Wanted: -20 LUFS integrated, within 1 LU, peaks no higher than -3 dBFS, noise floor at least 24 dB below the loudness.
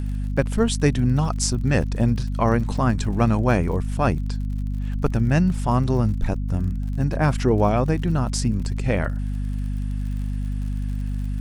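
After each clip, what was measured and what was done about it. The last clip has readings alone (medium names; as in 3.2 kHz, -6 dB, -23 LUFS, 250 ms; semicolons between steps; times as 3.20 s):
tick rate 54 per s; hum 50 Hz; highest harmonic 250 Hz; hum level -23 dBFS; loudness -23.0 LUFS; peak level -3.5 dBFS; loudness target -20.0 LUFS
-> de-click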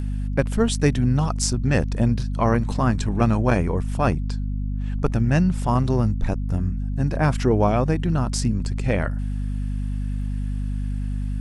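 tick rate 0.26 per s; hum 50 Hz; highest harmonic 250 Hz; hum level -23 dBFS
-> hum notches 50/100/150/200/250 Hz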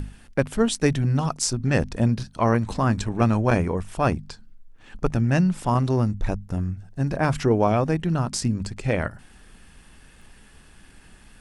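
hum not found; loudness -23.5 LUFS; peak level -5.0 dBFS; loudness target -20.0 LUFS
-> trim +3.5 dB; peak limiter -3 dBFS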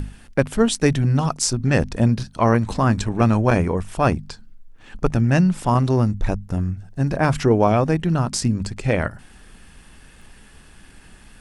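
loudness -20.5 LUFS; peak level -3.0 dBFS; noise floor -48 dBFS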